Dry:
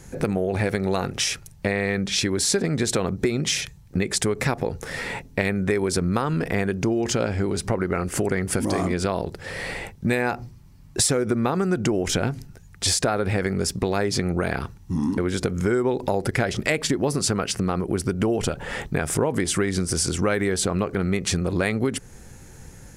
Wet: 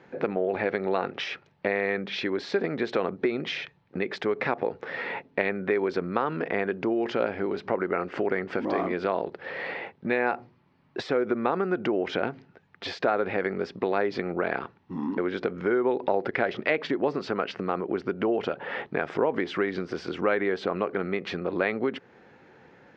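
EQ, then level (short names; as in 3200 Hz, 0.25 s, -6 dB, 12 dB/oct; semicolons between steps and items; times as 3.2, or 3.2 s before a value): HPF 330 Hz 12 dB/oct; Bessel low-pass 2300 Hz, order 6; 0.0 dB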